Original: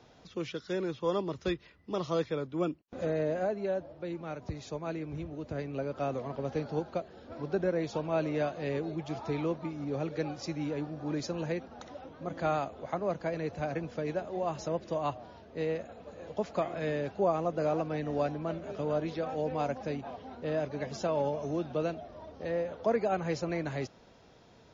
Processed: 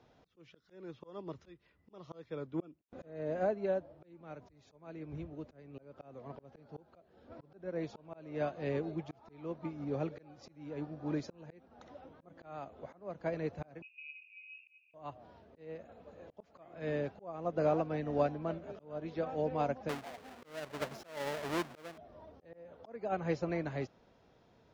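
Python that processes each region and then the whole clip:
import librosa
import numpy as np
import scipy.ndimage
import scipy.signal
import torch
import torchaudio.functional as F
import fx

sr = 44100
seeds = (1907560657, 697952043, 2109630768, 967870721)

y = fx.chain(x, sr, fx.cheby2_bandstop(low_hz=780.0, high_hz=2100.0, order=4, stop_db=70),
    fx.freq_invert(carrier_hz=2700), at=(13.82, 14.94))
y = fx.chain(y, sr, fx.halfwave_hold(),
    fx.low_shelf(hz=270.0, db=-11.5), at=(19.89, 21.98))
y = fx.high_shelf(y, sr, hz=4500.0, db=-10.0)
y = fx.auto_swell(y, sr, attack_ms=380.0)
y = fx.upward_expand(y, sr, threshold_db=-42.0, expansion=1.5)
y = y * 10.0 ** (1.0 / 20.0)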